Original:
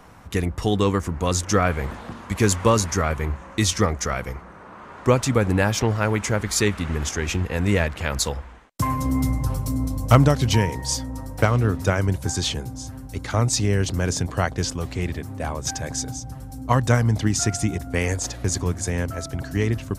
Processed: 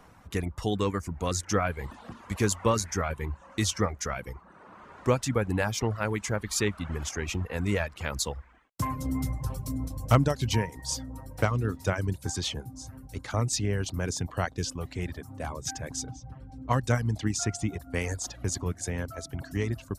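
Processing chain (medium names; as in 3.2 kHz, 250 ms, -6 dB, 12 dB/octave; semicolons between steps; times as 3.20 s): reverb removal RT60 0.62 s; 16.06–17.65 s: level-controlled noise filter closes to 2.7 kHz, open at -16 dBFS; trim -6.5 dB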